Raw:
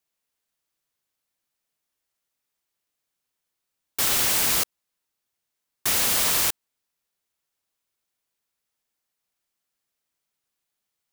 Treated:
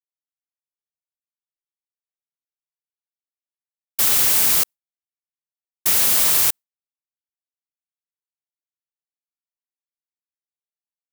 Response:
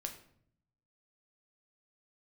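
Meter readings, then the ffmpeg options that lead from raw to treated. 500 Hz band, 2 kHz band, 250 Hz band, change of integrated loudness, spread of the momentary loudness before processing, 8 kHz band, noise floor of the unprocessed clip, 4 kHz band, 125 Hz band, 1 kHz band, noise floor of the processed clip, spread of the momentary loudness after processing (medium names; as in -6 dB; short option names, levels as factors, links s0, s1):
0.0 dB, +0.5 dB, 0.0 dB, +6.0 dB, 11 LU, +4.0 dB, -82 dBFS, +1.5 dB, 0.0 dB, 0.0 dB, under -85 dBFS, 11 LU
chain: -af "highshelf=f=8000:g=8,agate=range=0.0224:threshold=0.0708:ratio=3:detection=peak"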